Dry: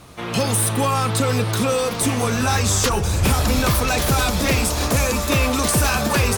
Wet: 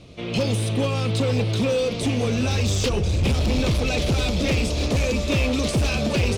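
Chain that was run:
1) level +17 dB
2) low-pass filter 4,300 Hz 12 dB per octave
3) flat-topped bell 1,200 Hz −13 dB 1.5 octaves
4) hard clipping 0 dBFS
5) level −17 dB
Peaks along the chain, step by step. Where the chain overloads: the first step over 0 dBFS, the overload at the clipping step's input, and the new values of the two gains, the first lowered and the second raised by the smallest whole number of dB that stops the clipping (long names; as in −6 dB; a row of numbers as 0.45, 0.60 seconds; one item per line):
+6.5, +6.5, +7.5, 0.0, −17.0 dBFS
step 1, 7.5 dB
step 1 +9 dB, step 5 −9 dB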